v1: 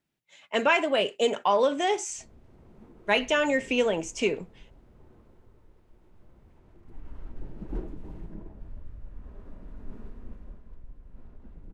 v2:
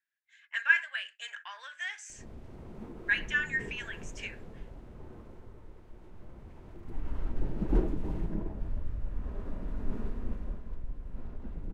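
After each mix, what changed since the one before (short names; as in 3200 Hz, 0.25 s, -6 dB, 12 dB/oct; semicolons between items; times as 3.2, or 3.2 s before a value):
speech: add ladder high-pass 1600 Hz, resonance 85%; background +7.5 dB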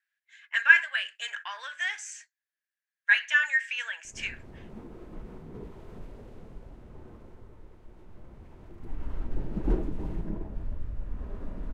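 speech +6.5 dB; background: entry +1.95 s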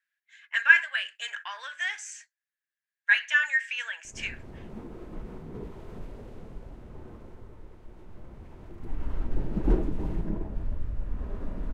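background +3.0 dB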